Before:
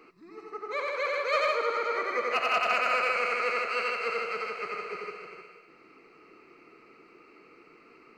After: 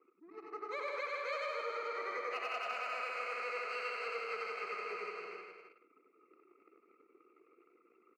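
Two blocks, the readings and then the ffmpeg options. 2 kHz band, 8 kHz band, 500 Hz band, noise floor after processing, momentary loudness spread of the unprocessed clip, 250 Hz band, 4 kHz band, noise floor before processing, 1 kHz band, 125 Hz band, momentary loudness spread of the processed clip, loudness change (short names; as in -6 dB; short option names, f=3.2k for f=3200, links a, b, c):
-10.5 dB, -11.0 dB, -10.5 dB, -71 dBFS, 15 LU, -10.5 dB, -11.5 dB, -57 dBFS, -10.5 dB, n/a, 10 LU, -11.0 dB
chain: -af "anlmdn=0.00631,acompressor=threshold=-35dB:ratio=6,highpass=330,aecho=1:1:99.13|265.3:0.501|0.447,volume=-3.5dB"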